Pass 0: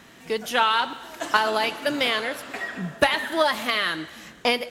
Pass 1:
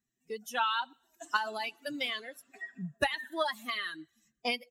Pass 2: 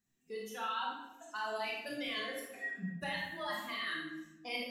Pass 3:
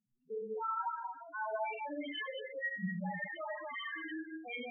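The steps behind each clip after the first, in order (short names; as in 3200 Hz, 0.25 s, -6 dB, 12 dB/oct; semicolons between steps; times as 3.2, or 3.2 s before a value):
per-bin expansion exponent 2; dynamic EQ 420 Hz, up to -5 dB, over -38 dBFS, Q 1.3; gain -6 dB
reverse; compressor 6:1, threshold -41 dBFS, peak gain reduction 17.5 dB; reverse; reverb RT60 0.95 s, pre-delay 23 ms, DRR -4 dB
non-linear reverb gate 0.24 s rising, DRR 2.5 dB; loudest bins only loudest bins 4; gain +2.5 dB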